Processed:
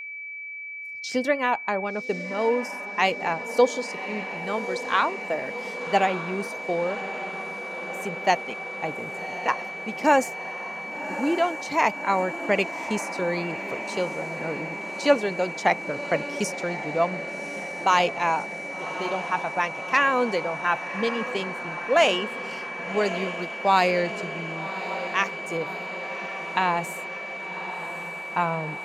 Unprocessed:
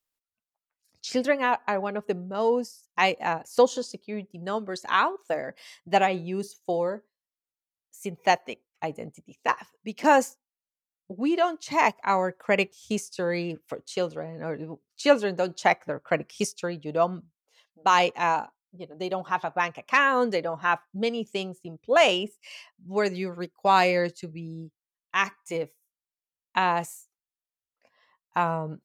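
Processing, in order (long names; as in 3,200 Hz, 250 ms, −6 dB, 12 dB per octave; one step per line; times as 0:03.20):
feedback delay with all-pass diffusion 1,127 ms, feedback 73%, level −11.5 dB
steady tone 2,300 Hz −34 dBFS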